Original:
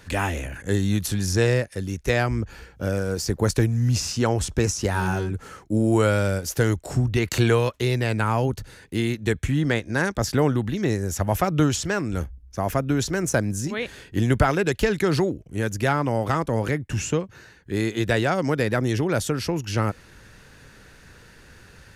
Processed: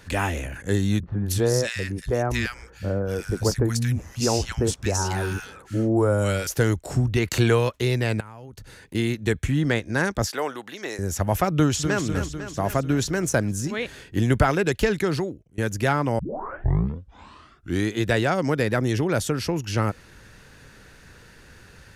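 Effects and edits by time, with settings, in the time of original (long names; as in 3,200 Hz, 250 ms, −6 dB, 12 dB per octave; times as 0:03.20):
0:01.00–0:06.47: three-band delay without the direct sound lows, mids, highs 30/260 ms, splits 170/1,400 Hz
0:08.20–0:08.95: downward compressor 10 to 1, threshold −37 dBFS
0:10.26–0:10.99: high-pass filter 610 Hz
0:11.54–0:12.03: delay throw 250 ms, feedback 65%, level −8.5 dB
0:14.91–0:15.58: fade out, to −23.5 dB
0:16.19: tape start 1.75 s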